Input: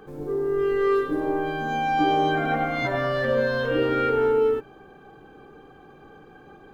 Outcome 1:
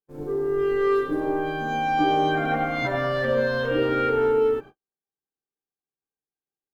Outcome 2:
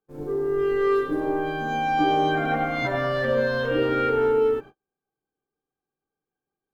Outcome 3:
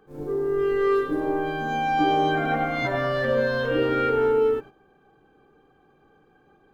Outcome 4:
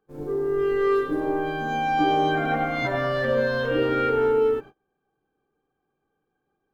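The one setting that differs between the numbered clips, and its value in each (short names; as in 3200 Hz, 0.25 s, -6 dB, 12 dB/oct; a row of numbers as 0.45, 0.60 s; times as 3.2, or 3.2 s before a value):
gate, range: -54, -41, -11, -29 dB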